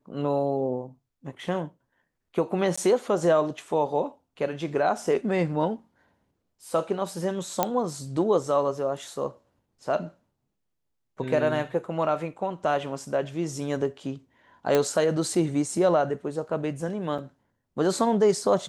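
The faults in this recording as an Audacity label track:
2.760000	2.770000	dropout 15 ms
7.630000	7.630000	pop -7 dBFS
14.750000	14.750000	pop -9 dBFS
17.180000	17.190000	dropout 5.4 ms

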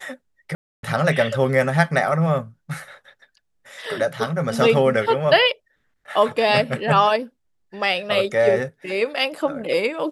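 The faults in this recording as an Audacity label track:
0.550000	0.830000	dropout 282 ms

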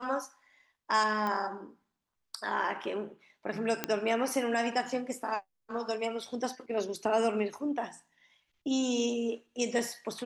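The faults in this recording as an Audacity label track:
1.270000	1.270000	pop -21 dBFS
3.840000	3.840000	pop -12 dBFS

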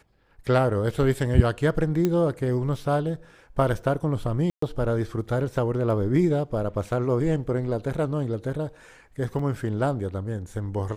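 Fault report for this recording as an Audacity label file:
2.050000	2.050000	pop -11 dBFS
4.500000	4.620000	dropout 124 ms
9.390000	9.390000	dropout 4.4 ms

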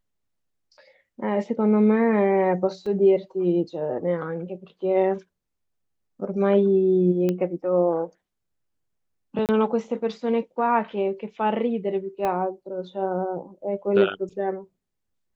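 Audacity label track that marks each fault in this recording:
2.860000	2.860000	dropout 3.7 ms
7.290000	7.290000	pop -13 dBFS
9.460000	9.490000	dropout 28 ms
12.250000	12.250000	pop -14 dBFS

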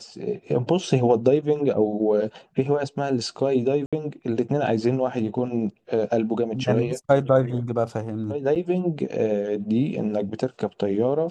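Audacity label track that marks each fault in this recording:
3.860000	3.930000	dropout 66 ms
8.550000	8.560000	dropout 7.4 ms

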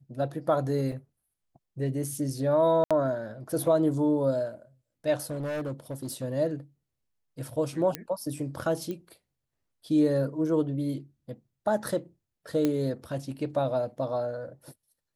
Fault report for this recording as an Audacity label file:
0.920000	0.920000	dropout 3 ms
2.840000	2.910000	dropout 66 ms
5.230000	6.240000	clipped -29.5 dBFS
7.950000	7.950000	pop -13 dBFS
8.910000	8.910000	pop -23 dBFS
12.650000	12.650000	pop -13 dBFS

